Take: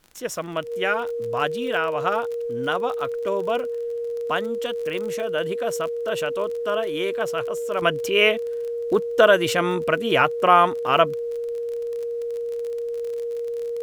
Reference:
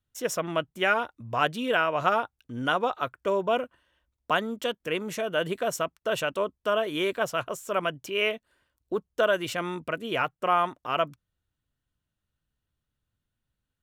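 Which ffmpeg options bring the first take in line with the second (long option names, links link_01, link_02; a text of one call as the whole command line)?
ffmpeg -i in.wav -af "adeclick=threshold=4,bandreject=frequency=470:width=30,agate=range=-21dB:threshold=-20dB,asetnsamples=nb_out_samples=441:pad=0,asendcmd='7.82 volume volume -8.5dB',volume=0dB" out.wav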